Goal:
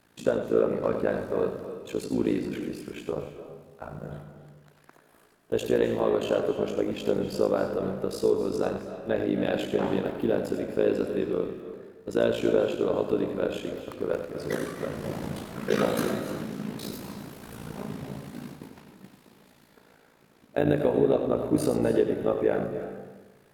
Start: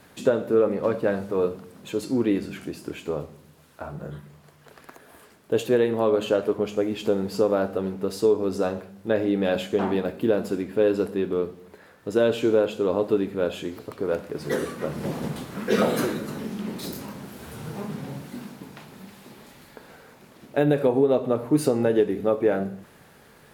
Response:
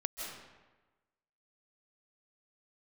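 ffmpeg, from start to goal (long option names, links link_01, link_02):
-filter_complex "[0:a]agate=range=-7dB:threshold=-41dB:ratio=16:detection=peak,tremolo=f=56:d=0.889,asplit=2[link_01][link_02];[1:a]atrim=start_sample=2205,adelay=95[link_03];[link_02][link_03]afir=irnorm=-1:irlink=0,volume=-8dB[link_04];[link_01][link_04]amix=inputs=2:normalize=0"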